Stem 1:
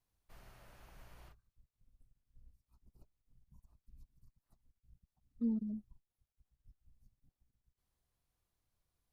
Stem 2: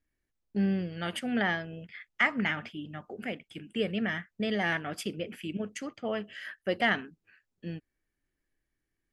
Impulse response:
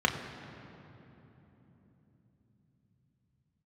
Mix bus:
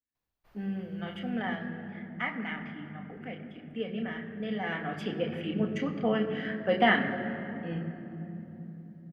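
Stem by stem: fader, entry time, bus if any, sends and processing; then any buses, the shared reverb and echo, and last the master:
+3.0 dB, 0.15 s, no send, bass shelf 210 Hz -7.5 dB; auto duck -8 dB, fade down 0.90 s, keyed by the second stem
4.59 s -23.5 dB -> 5.19 s -14 dB, 0.00 s, send -3.5 dB, level rider gain up to 9.5 dB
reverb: on, RT60 3.6 s, pre-delay 3 ms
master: peaking EQ 8.8 kHz -10 dB 1.4 oct

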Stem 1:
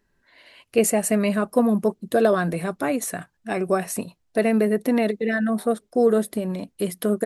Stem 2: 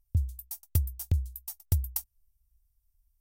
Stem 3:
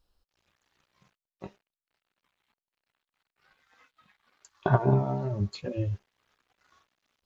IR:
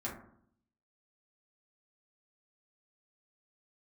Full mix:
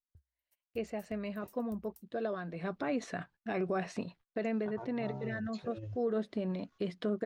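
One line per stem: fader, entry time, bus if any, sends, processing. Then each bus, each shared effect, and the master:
2.51 s -17.5 dB -> 2.73 s -5 dB -> 4.20 s -5 dB -> 4.63 s -15.5 dB -> 5.97 s -15.5 dB -> 6.37 s -8 dB, 0.00 s, no send, low-pass 4.7 kHz 24 dB/octave
-18.5 dB, 0.00 s, no send, compression 20:1, threshold -36 dBFS, peak gain reduction 16.5 dB
-14.5 dB, 0.00 s, no send, compressor with a negative ratio -29 dBFS, ratio -0.5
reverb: none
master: gate -55 dBFS, range -28 dB; peak limiter -24.5 dBFS, peak gain reduction 10 dB

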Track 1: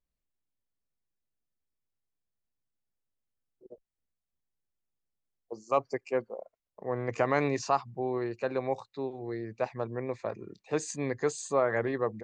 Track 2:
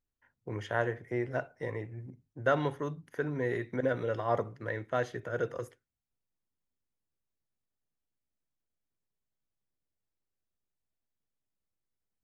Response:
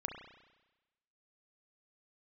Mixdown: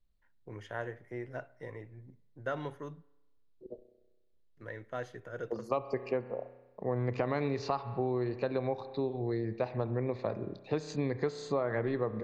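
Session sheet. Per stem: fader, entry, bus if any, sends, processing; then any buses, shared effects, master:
-2.0 dB, 0.00 s, send -6.5 dB, resonant low-pass 4.1 kHz, resonance Q 3.2; tilt EQ -2.5 dB/octave
-8.5 dB, 0.00 s, muted 3.03–4.57 s, send -18 dB, none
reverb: on, RT60 1.1 s, pre-delay 32 ms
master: compression 6:1, threshold -28 dBFS, peak gain reduction 10.5 dB

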